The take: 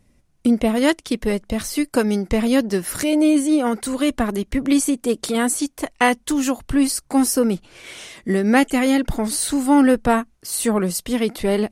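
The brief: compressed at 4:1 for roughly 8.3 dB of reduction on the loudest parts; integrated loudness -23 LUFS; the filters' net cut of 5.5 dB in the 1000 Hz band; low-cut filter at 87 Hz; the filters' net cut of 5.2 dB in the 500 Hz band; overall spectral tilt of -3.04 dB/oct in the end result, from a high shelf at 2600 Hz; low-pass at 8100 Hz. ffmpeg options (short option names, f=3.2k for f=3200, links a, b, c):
-af "highpass=87,lowpass=8.1k,equalizer=f=500:t=o:g=-5,equalizer=f=1k:t=o:g=-6.5,highshelf=f=2.6k:g=7.5,acompressor=threshold=-23dB:ratio=4,volume=3.5dB"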